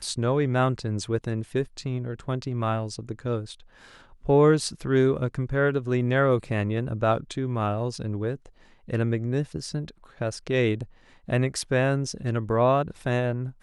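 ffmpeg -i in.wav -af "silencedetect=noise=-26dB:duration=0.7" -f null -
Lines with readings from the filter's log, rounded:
silence_start: 3.39
silence_end: 4.29 | silence_duration: 0.90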